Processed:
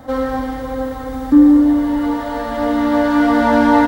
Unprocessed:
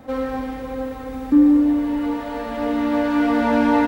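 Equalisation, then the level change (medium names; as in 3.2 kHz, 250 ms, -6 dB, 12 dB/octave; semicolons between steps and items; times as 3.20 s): graphic EQ with 31 bands 200 Hz -9 dB, 400 Hz -11 dB, 2.5 kHz -11 dB; +7.0 dB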